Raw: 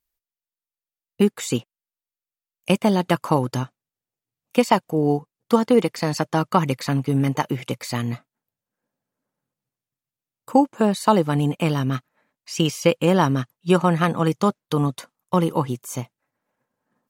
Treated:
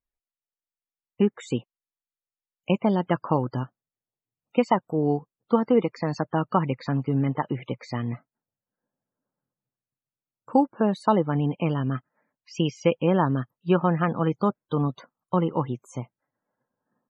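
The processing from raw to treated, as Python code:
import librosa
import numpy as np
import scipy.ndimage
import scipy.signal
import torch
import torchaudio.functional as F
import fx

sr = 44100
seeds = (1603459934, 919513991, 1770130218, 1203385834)

y = fx.lowpass(x, sr, hz=2300.0, slope=6)
y = fx.spec_topn(y, sr, count=64)
y = y * 10.0 ** (-3.5 / 20.0)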